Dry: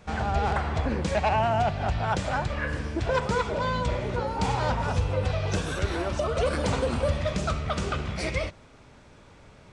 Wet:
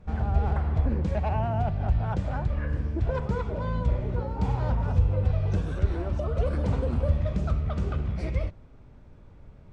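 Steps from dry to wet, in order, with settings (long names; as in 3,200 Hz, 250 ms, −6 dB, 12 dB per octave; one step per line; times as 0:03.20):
spectral tilt −3.5 dB per octave
level −8.5 dB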